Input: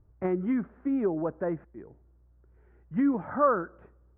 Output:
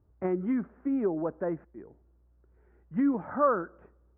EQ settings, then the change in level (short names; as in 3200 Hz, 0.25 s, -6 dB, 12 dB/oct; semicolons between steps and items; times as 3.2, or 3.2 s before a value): HPF 56 Hz; air absorption 280 m; bell 120 Hz -6 dB 0.77 oct; 0.0 dB